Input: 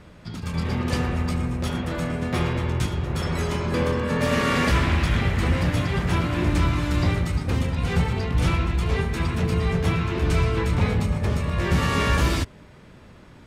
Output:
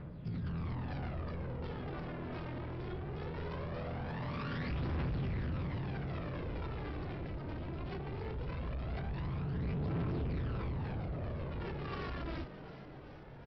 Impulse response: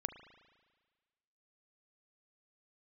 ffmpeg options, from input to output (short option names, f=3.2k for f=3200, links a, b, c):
-filter_complex "[0:a]lowpass=f=1.5k:p=1,equalizer=f=140:w=4.6:g=12,alimiter=limit=-17dB:level=0:latency=1:release=45,aresample=11025,asoftclip=type=tanh:threshold=-32.5dB,aresample=44100,aphaser=in_gain=1:out_gain=1:delay=3.3:decay=0.49:speed=0.2:type=triangular,asplit=8[a][b][c][d][e][f][g][h];[b]adelay=378,afreqshift=120,volume=-13.5dB[i];[c]adelay=756,afreqshift=240,volume=-17.7dB[j];[d]adelay=1134,afreqshift=360,volume=-21.8dB[k];[e]adelay=1512,afreqshift=480,volume=-26dB[l];[f]adelay=1890,afreqshift=600,volume=-30.1dB[m];[g]adelay=2268,afreqshift=720,volume=-34.3dB[n];[h]adelay=2646,afreqshift=840,volume=-38.4dB[o];[a][i][j][k][l][m][n][o]amix=inputs=8:normalize=0,volume=-6.5dB"